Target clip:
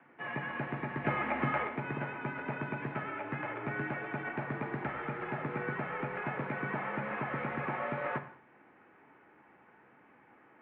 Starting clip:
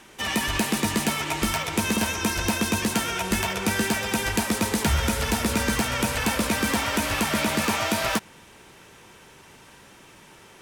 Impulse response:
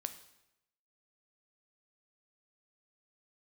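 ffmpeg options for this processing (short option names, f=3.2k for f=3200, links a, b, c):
-filter_complex "[0:a]asettb=1/sr,asplit=3[a][b][c];[a]atrim=end=1.044[d];[b]atrim=start=1.04:end=1.68,asetpts=PTS-STARTPTS,afade=t=in:d=0.004:c=qsin,afade=t=out:st=0.636:d=0.004:c=qsin,acontrast=67[e];[c]atrim=start=1.676[f];[d][e]acrossfade=d=0.004:c1=hsin:c2=qsin[g];[g][f]acrossfade=d=0.004:c1=qsin:c2=hsin[h];[1:a]atrim=start_sample=2205,afade=t=out:st=0.27:d=0.01,atrim=end_sample=12348[i];[h][i]afir=irnorm=-1:irlink=0,highpass=f=250:t=q:w=0.5412,highpass=f=250:t=q:w=1.307,lowpass=f=2.2k:t=q:w=0.5176,lowpass=f=2.2k:t=q:w=0.7071,lowpass=f=2.2k:t=q:w=1.932,afreqshift=-77,volume=-7dB"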